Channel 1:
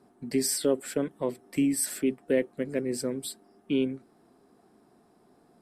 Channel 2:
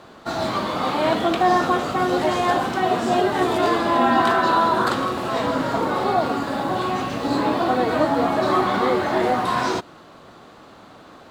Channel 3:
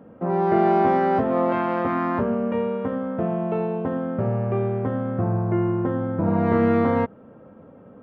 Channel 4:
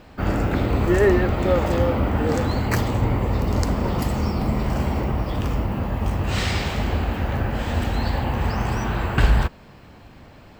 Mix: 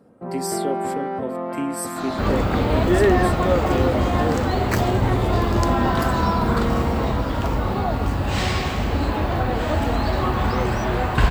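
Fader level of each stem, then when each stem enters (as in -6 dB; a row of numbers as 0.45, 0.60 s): -2.0, -6.0, -7.0, 0.0 dB; 0.00, 1.70, 0.00, 2.00 s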